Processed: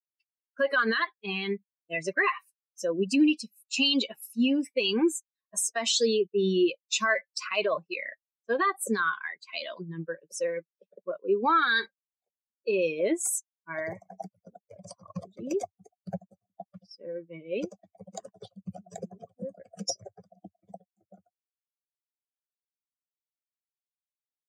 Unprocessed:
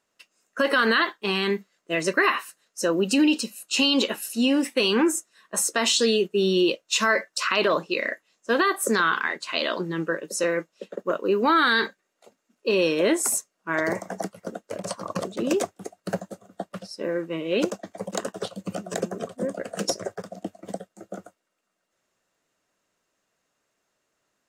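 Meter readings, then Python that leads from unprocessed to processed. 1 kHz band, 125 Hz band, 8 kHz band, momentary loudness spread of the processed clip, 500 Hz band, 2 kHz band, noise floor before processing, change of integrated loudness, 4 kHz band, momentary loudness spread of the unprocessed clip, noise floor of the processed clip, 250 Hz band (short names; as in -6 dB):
-5.0 dB, -5.5 dB, -5.5 dB, 19 LU, -5.0 dB, -5.0 dB, -77 dBFS, -4.0 dB, -5.5 dB, 16 LU, under -85 dBFS, -4.5 dB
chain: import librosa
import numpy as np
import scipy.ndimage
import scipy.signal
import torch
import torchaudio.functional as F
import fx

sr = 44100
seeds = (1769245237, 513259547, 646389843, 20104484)

y = fx.bin_expand(x, sr, power=2.0)
y = scipy.signal.sosfilt(scipy.signal.butter(2, 11000.0, 'lowpass', fs=sr, output='sos'), y)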